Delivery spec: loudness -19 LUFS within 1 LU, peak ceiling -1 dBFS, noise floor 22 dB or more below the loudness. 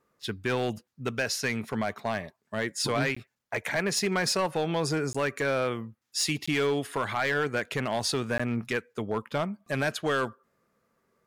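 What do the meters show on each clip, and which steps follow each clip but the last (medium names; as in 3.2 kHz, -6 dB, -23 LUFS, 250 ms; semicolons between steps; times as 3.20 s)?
clipped samples 1.0%; clipping level -20.5 dBFS; dropouts 4; longest dropout 15 ms; loudness -29.5 LUFS; peak level -20.5 dBFS; loudness target -19.0 LUFS
-> clip repair -20.5 dBFS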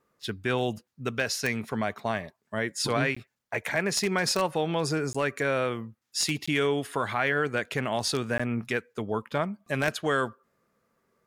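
clipped samples 0.0%; dropouts 4; longest dropout 15 ms
-> interpolate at 3.15/5.13/6.46/8.38 s, 15 ms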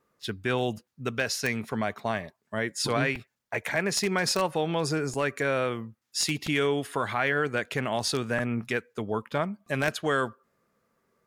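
dropouts 0; loudness -29.0 LUFS; peak level -11.5 dBFS; loudness target -19.0 LUFS
-> trim +10 dB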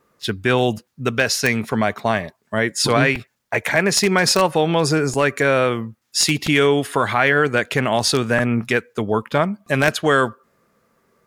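loudness -19.0 LUFS; peak level -1.5 dBFS; noise floor -69 dBFS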